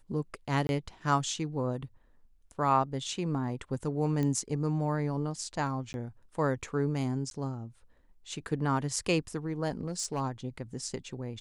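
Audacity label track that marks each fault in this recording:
0.670000	0.690000	drop-out 21 ms
4.230000	4.230000	click −20 dBFS
5.930000	5.940000	drop-out 11 ms
7.300000	7.310000	drop-out 12 ms
9.720000	10.210000	clipping −26.5 dBFS

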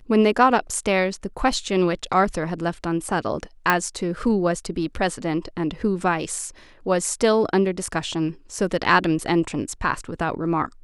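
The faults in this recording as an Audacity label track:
3.700000	3.700000	click −4 dBFS

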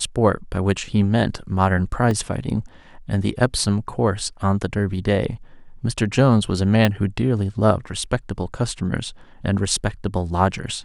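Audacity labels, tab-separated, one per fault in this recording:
2.110000	2.110000	drop-out 2.4 ms
6.850000	6.850000	click −4 dBFS

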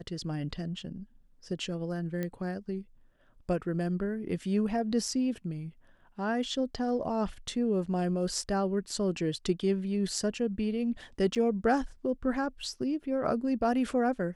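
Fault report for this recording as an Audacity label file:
2.230000	2.230000	click −21 dBFS
11.350000	11.360000	drop-out 7.1 ms

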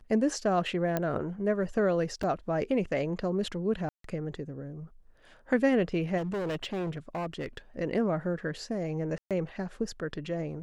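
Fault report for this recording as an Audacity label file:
0.970000	0.970000	click −15 dBFS
2.230000	2.230000	drop-out 4.6 ms
3.890000	4.040000	drop-out 153 ms
6.170000	7.580000	clipping −29.5 dBFS
9.180000	9.310000	drop-out 127 ms

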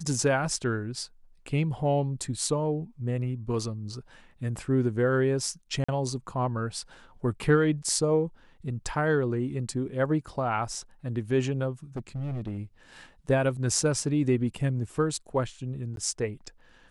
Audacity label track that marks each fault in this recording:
5.840000	5.880000	drop-out 45 ms
11.960000	12.580000	clipping −29 dBFS
15.960000	15.970000	drop-out 12 ms

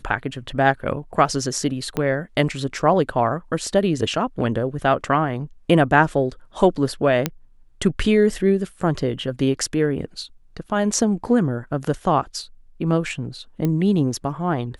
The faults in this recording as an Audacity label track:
1.970000	1.970000	click −10 dBFS
7.260000	7.260000	click −5 dBFS
13.650000	13.650000	click −11 dBFS

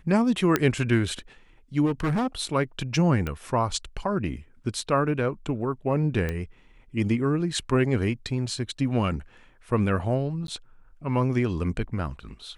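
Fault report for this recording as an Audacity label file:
0.560000	0.560000	click −7 dBFS
1.850000	2.270000	clipping −21 dBFS
3.270000	3.270000	click −17 dBFS
6.290000	6.290000	click −16 dBFS
10.470000	10.480000	drop-out 12 ms

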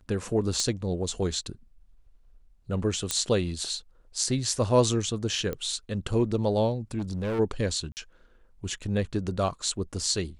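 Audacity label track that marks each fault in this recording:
0.600000	0.600000	click −14 dBFS
3.110000	3.110000	click −10 dBFS
5.530000	5.530000	click −19 dBFS
6.980000	7.400000	clipping −26.5 dBFS
7.920000	7.970000	drop-out 49 ms

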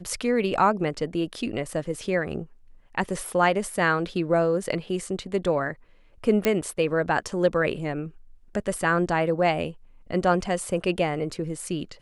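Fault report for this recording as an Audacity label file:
6.450000	6.450000	click −8 dBFS

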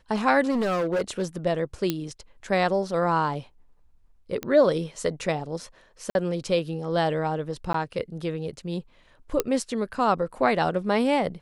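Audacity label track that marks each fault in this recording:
0.500000	1.370000	clipping −21.5 dBFS
1.900000	1.900000	click −10 dBFS
4.430000	4.430000	click −15 dBFS
6.100000	6.150000	drop-out 51 ms
7.730000	7.740000	drop-out 13 ms
9.400000	9.400000	click −8 dBFS

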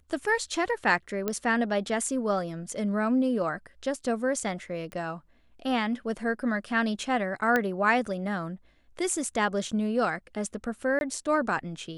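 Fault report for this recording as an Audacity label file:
1.280000	1.280000	click −14 dBFS
4.920000	4.920000	click −26 dBFS
7.560000	7.560000	click −12 dBFS
10.990000	11.010000	drop-out 21 ms

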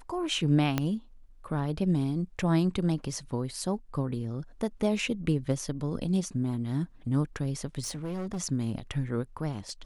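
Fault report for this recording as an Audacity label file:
0.780000	0.780000	click −12 dBFS
7.800000	8.400000	clipping −30.5 dBFS

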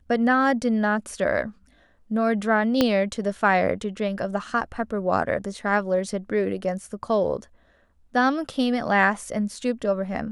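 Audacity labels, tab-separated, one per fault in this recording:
2.810000	2.810000	click −6 dBFS

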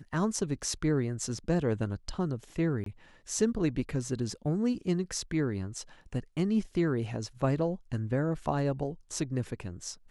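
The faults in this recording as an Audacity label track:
2.840000	2.860000	drop-out 23 ms

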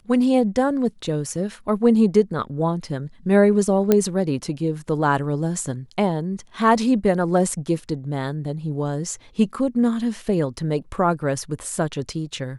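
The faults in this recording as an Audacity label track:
3.920000	3.920000	click −4 dBFS

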